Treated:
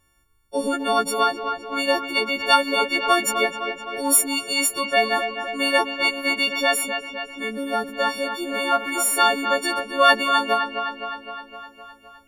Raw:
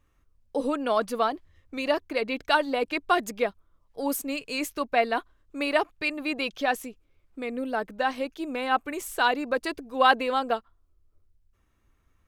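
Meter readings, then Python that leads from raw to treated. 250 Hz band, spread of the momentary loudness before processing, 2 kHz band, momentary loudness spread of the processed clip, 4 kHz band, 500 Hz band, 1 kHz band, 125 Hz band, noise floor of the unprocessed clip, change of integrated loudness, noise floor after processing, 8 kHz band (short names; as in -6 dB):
+2.5 dB, 9 LU, +7.0 dB, 11 LU, +10.5 dB, +3.5 dB, +5.5 dB, n/a, -68 dBFS, +6.5 dB, -55 dBFS, +17.0 dB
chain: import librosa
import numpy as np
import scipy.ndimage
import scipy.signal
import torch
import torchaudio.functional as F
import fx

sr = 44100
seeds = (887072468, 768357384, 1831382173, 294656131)

y = fx.freq_snap(x, sr, grid_st=4)
y = fx.echo_wet_lowpass(y, sr, ms=257, feedback_pct=63, hz=3400.0, wet_db=-8)
y = y * librosa.db_to_amplitude(2.5)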